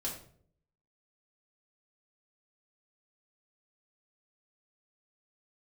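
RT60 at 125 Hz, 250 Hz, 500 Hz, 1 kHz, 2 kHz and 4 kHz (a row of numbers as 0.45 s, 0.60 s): 0.85 s, 0.75 s, 0.70 s, 0.50 s, 0.40 s, 0.40 s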